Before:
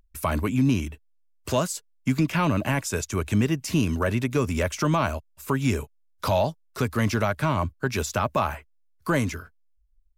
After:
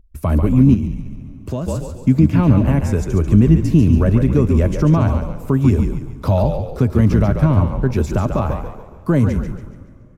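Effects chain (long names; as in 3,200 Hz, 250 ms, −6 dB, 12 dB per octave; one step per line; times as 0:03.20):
echo with shifted repeats 141 ms, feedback 41%, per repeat −47 Hz, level −6.5 dB
dense smooth reverb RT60 2.8 s, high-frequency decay 0.85×, DRR 17 dB
0:00.74–0:01.68: downward compressor 1.5 to 1, threshold −40 dBFS, peak gain reduction 8 dB
tilt shelving filter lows +10 dB, about 660 Hz
level +2.5 dB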